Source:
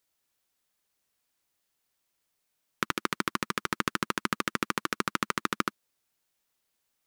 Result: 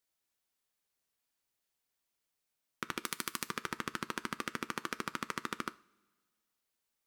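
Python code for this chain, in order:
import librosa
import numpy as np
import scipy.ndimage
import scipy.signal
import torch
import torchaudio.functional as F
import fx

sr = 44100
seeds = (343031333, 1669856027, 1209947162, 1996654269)

y = fx.pre_emphasis(x, sr, coefficient=0.8, at=(3.0, 3.46))
y = fx.level_steps(y, sr, step_db=22)
y = fx.rev_double_slope(y, sr, seeds[0], early_s=0.38, late_s=1.6, knee_db=-18, drr_db=9.5)
y = fx.upward_expand(y, sr, threshold_db=-54.0, expansion=1.5)
y = F.gain(torch.from_numpy(y), 7.5).numpy()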